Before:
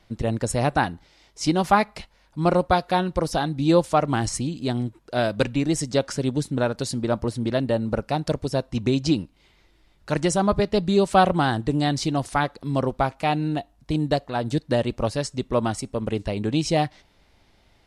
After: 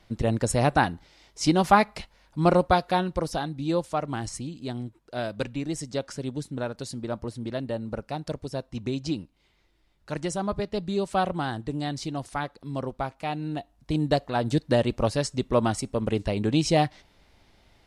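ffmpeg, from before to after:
ffmpeg -i in.wav -af "volume=8dB,afade=type=out:start_time=2.5:duration=1.15:silence=0.398107,afade=type=in:start_time=13.37:duration=0.9:silence=0.398107" out.wav

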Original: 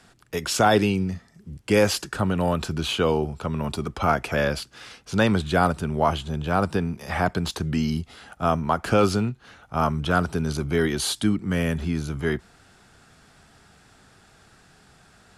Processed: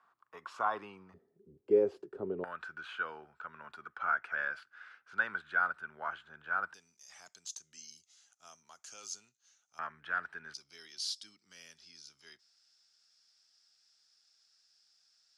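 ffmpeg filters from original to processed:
ffmpeg -i in.wav -af "asetnsamples=nb_out_samples=441:pad=0,asendcmd='1.14 bandpass f 400;2.44 bandpass f 1500;6.74 bandpass f 6400;9.79 bandpass f 1700;10.54 bandpass f 5200',bandpass=frequency=1100:width_type=q:width=7.7:csg=0" out.wav

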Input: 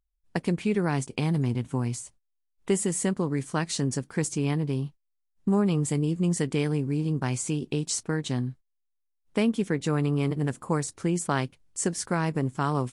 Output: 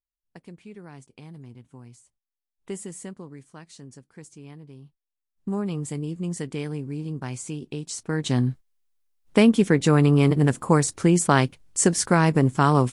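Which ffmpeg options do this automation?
ffmpeg -i in.wav -af "volume=16dB,afade=type=in:start_time=2.02:duration=0.73:silence=0.375837,afade=type=out:start_time=2.75:duration=0.75:silence=0.398107,afade=type=in:start_time=4.8:duration=0.71:silence=0.237137,afade=type=in:start_time=7.97:duration=0.51:silence=0.237137" out.wav

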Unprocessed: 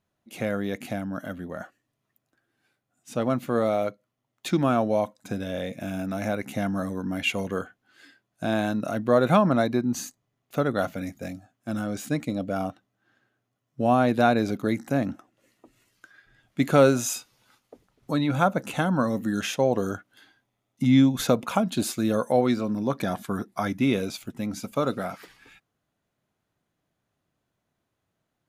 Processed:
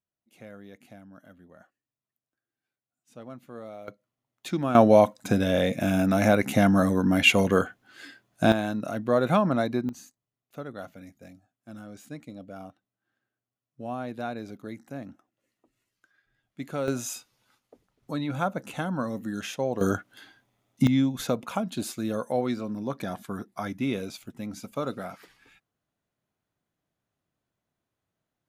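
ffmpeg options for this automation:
ffmpeg -i in.wav -af "asetnsamples=nb_out_samples=441:pad=0,asendcmd='3.88 volume volume -5dB;4.75 volume volume 7.5dB;8.52 volume volume -3dB;9.89 volume volume -13.5dB;16.88 volume volume -6dB;19.81 volume volume 5dB;20.87 volume volume -5.5dB',volume=-17.5dB" out.wav

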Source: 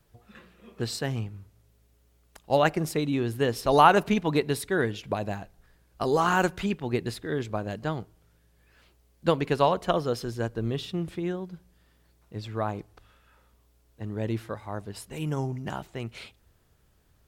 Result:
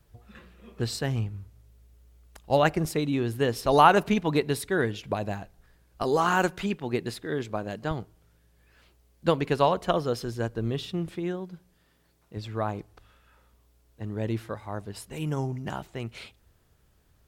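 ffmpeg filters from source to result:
ffmpeg -i in.wav -af "asetnsamples=nb_out_samples=441:pad=0,asendcmd='2.85 equalizer g 1.5;6.02 equalizer g -9;7.91 equalizer g 1;11.06 equalizer g -7;12.37 equalizer g 1',equalizer=frequency=62:width_type=o:width=1.4:gain=9" out.wav

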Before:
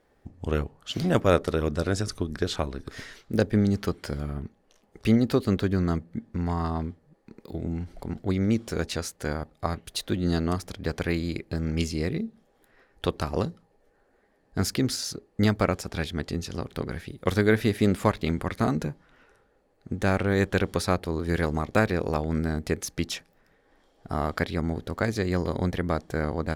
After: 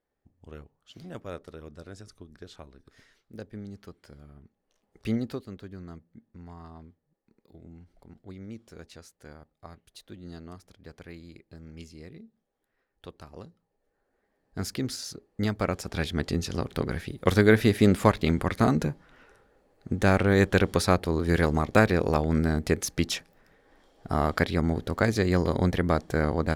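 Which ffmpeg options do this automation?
ffmpeg -i in.wav -af "volume=13dB,afade=type=in:start_time=4.43:duration=0.73:silence=0.281838,afade=type=out:start_time=5.16:duration=0.31:silence=0.298538,afade=type=in:start_time=13.48:duration=1.32:silence=0.251189,afade=type=in:start_time=15.55:duration=0.69:silence=0.398107" out.wav

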